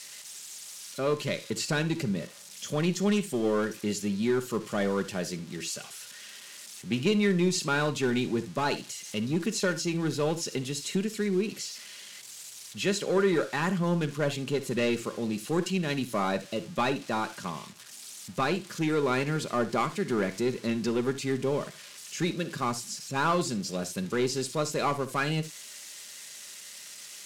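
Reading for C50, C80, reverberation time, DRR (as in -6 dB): 15.5 dB, 24.0 dB, not exponential, 8.0 dB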